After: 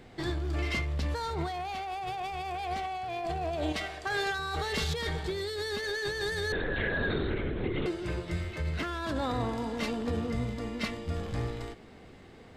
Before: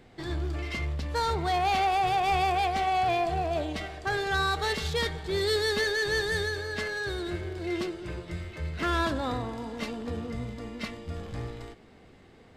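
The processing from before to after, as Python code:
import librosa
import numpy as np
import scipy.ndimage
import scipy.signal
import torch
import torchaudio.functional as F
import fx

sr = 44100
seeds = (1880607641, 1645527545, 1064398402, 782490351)

y = fx.low_shelf(x, sr, hz=460.0, db=-8.5, at=(3.72, 4.39))
y = fx.over_compress(y, sr, threshold_db=-32.0, ratio=-1.0)
y = fx.lpc_vocoder(y, sr, seeds[0], excitation='whisper', order=10, at=(6.52, 7.86))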